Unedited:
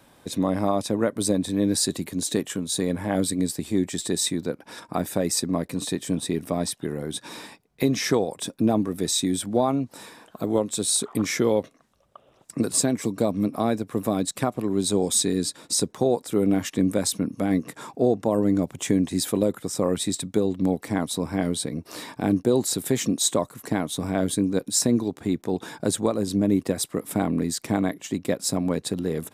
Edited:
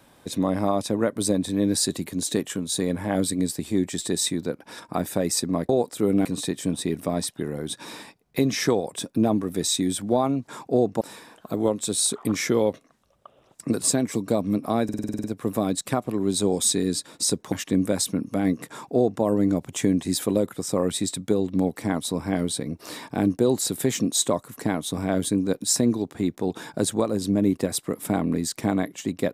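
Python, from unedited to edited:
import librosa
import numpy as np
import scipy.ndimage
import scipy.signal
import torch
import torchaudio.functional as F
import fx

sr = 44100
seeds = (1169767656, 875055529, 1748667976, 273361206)

y = fx.edit(x, sr, fx.stutter(start_s=13.74, slice_s=0.05, count=9),
    fx.move(start_s=16.02, length_s=0.56, to_s=5.69),
    fx.duplicate(start_s=17.75, length_s=0.54, to_s=9.91), tone=tone)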